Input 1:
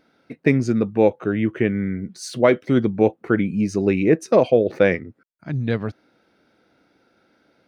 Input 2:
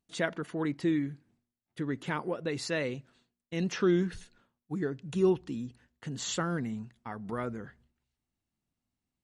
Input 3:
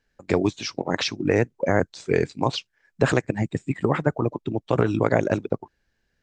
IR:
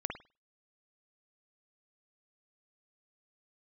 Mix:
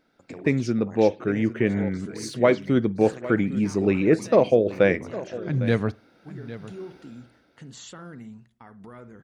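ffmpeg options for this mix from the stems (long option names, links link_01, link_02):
-filter_complex "[0:a]dynaudnorm=framelen=100:gausssize=13:maxgain=16dB,volume=-6.5dB,asplit=3[link_01][link_02][link_03];[link_02]volume=-21dB[link_04];[link_03]volume=-15dB[link_05];[1:a]adelay=1550,volume=-3.5dB,asplit=2[link_06][link_07];[link_07]volume=-17dB[link_08];[2:a]highshelf=frequency=6000:gain=11,volume=-13dB,asplit=2[link_09][link_10];[link_10]volume=-13dB[link_11];[link_06][link_09]amix=inputs=2:normalize=0,alimiter=level_in=12dB:limit=-24dB:level=0:latency=1:release=261,volume=-12dB,volume=0dB[link_12];[3:a]atrim=start_sample=2205[link_13];[link_04][link_08][link_11]amix=inputs=3:normalize=0[link_14];[link_14][link_13]afir=irnorm=-1:irlink=0[link_15];[link_05]aecho=0:1:806:1[link_16];[link_01][link_12][link_15][link_16]amix=inputs=4:normalize=0"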